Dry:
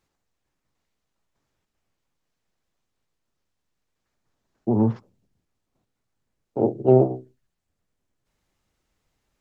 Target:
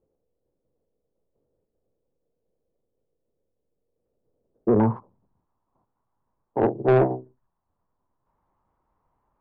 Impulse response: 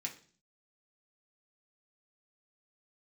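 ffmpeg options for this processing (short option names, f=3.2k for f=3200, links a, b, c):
-af "asetnsamples=n=441:p=0,asendcmd='4.8 lowpass f 1000',lowpass=f=490:t=q:w=4.9,asoftclip=type=tanh:threshold=-11.5dB"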